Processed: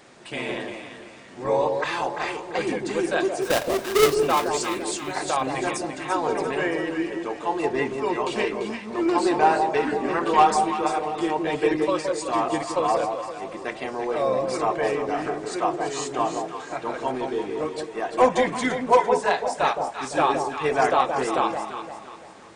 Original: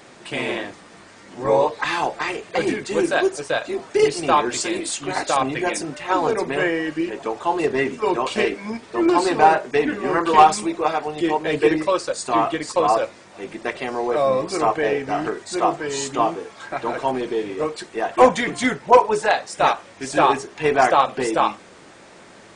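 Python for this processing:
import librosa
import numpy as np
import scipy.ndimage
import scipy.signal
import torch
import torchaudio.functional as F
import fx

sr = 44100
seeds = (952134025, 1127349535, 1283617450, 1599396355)

y = fx.halfwave_hold(x, sr, at=(3.41, 4.13), fade=0.02)
y = fx.echo_alternate(y, sr, ms=171, hz=900.0, feedback_pct=61, wet_db=-4.0)
y = y * 10.0 ** (-5.0 / 20.0)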